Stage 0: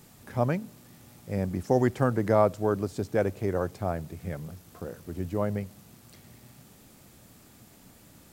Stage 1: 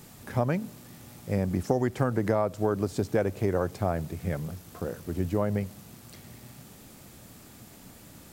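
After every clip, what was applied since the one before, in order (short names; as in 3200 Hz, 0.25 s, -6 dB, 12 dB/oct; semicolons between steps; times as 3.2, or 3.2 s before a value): compressor 12:1, threshold -25 dBFS, peak gain reduction 10.5 dB; gain +4.5 dB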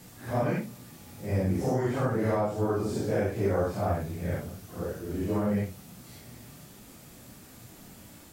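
phase scrambler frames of 0.2 s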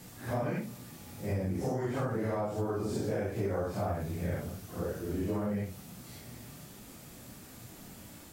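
compressor, threshold -29 dBFS, peak gain reduction 7.5 dB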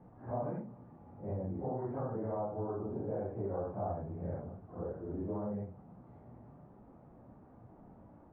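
ladder low-pass 1100 Hz, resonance 35%; gain +1.5 dB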